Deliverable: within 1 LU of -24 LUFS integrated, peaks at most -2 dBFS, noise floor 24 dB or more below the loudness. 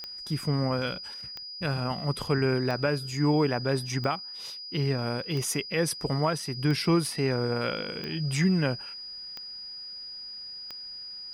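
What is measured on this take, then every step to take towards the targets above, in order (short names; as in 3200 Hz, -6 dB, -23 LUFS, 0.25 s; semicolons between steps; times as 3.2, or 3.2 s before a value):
clicks 9; steady tone 4900 Hz; tone level -38 dBFS; loudness -29.0 LUFS; peak -14.5 dBFS; loudness target -24.0 LUFS
-> de-click; notch 4900 Hz, Q 30; gain +5 dB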